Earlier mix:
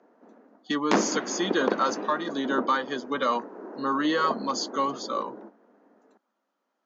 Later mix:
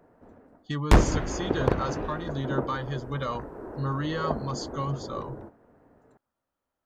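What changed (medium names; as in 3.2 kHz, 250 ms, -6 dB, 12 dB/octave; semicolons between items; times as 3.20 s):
speech -7.5 dB; master: remove Chebyshev band-pass 200–6700 Hz, order 5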